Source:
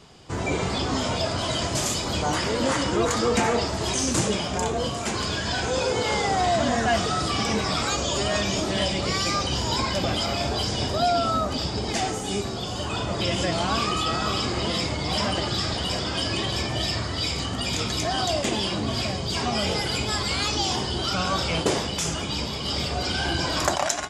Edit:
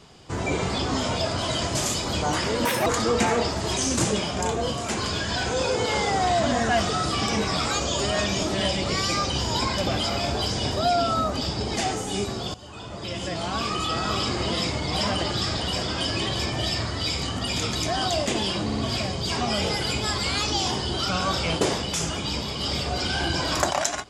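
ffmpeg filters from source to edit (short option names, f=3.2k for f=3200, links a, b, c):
-filter_complex "[0:a]asplit=6[a][b][c][d][e][f];[a]atrim=end=2.654[g];[b]atrim=start=2.65:end=3.03,asetpts=PTS-STARTPTS,asetrate=78939,aresample=44100,atrim=end_sample=9362,asetpts=PTS-STARTPTS[h];[c]atrim=start=3.026:end=12.71,asetpts=PTS-STARTPTS,afade=t=out:st=9.68:d=0.004:c=hsin:silence=0.158489[i];[d]atrim=start=12.71:end=18.872,asetpts=PTS-STARTPTS,afade=t=in:d=1.64:silence=0.158489[j];[e]atrim=start=18.808:end=18.872[k];[f]atrim=start=18.808[l];[g][h]acrossfade=d=0.004:c1=hsin:c2=hsin[m];[i][j]concat=n=2:v=0:a=1[n];[m][n]acrossfade=d=0.004:c1=hsin:c2=hsin[o];[o][k]acrossfade=d=0.004:c1=hsin:c2=hsin[p];[p][l]acrossfade=d=0.004:c1=hsin:c2=hsin"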